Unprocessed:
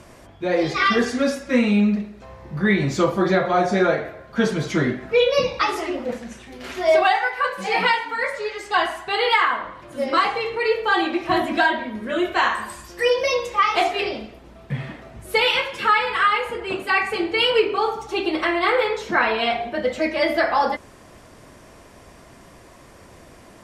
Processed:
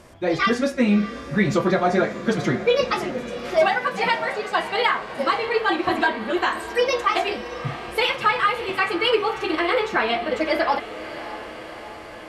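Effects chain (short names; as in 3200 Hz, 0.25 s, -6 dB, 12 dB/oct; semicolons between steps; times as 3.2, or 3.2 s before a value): diffused feedback echo 1.205 s, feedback 67%, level -13 dB; time stretch by phase-locked vocoder 0.52×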